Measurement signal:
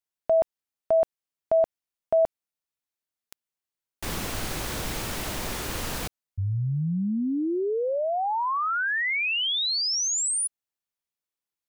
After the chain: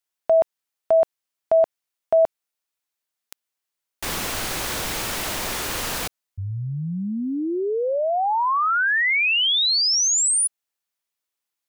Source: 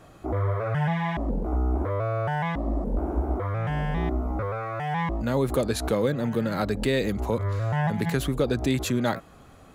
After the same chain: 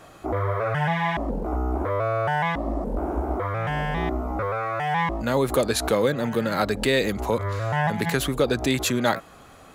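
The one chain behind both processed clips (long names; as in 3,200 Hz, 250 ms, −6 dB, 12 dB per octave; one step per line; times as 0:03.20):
low-shelf EQ 360 Hz −9 dB
level +6.5 dB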